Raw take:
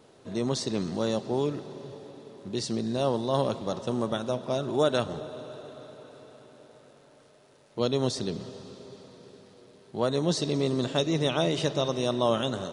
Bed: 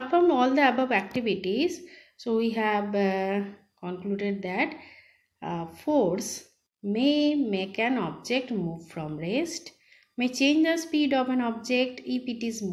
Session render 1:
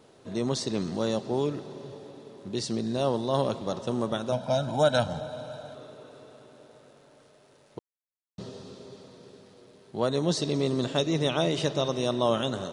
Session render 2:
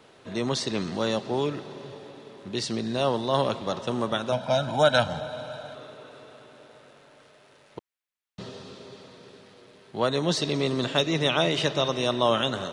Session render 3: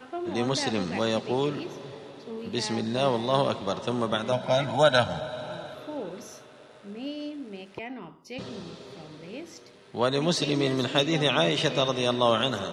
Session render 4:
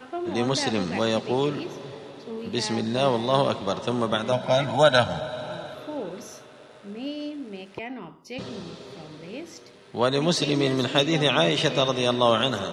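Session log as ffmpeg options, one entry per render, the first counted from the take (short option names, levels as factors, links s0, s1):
-filter_complex "[0:a]asettb=1/sr,asplit=3[s0][s1][s2];[s0]atrim=end=4.324[s3];[s1]atrim=start=4.32:end=5.75,asetpts=PTS-STARTPTS,afade=t=in:d=0.004:c=qsin,afade=t=out:st=1.426:d=0.004:c=qsin,aecho=1:1:1.3:0.91,atrim=end_sample=63063[s4];[s2]atrim=start=5.746[s5];[s3][s4]acrossfade=d=0.004:c1=hsin:c2=qsin[s6];[s6][s5]acrossfade=d=0.004:c1=qsin:c2=hsin,asplit=3[s7][s8][s9];[s7]atrim=end=7.79,asetpts=PTS-STARTPTS,afade=t=out:st=7.786:d=0.004:c=hsin[s10];[s8]atrim=start=7.79:end=8.38,asetpts=PTS-STARTPTS,volume=0[s11];[s9]atrim=start=8.38,asetpts=PTS-STARTPTS,afade=t=in:d=0.004:c=hsin[s12];[s10][s11][s12]concat=n=3:v=0:a=1"
-filter_complex "[0:a]acrossover=split=380|2900[s0][s1][s2];[s1]crystalizer=i=9.5:c=0[s3];[s2]volume=15.8,asoftclip=hard,volume=0.0631[s4];[s0][s3][s4]amix=inputs=3:normalize=0"
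-filter_complex "[1:a]volume=0.237[s0];[0:a][s0]amix=inputs=2:normalize=0"
-af "volume=1.33"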